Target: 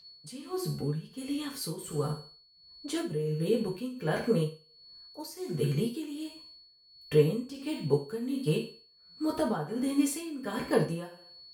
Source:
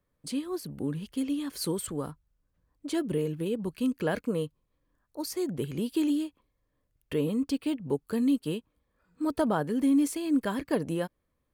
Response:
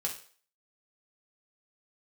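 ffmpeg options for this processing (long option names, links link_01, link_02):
-filter_complex "[0:a]aeval=exprs='val(0)+0.00355*sin(2*PI*4400*n/s)':channel_layout=same[link_01];[1:a]atrim=start_sample=2205,asetrate=40131,aresample=44100[link_02];[link_01][link_02]afir=irnorm=-1:irlink=0,tremolo=f=1.4:d=0.74"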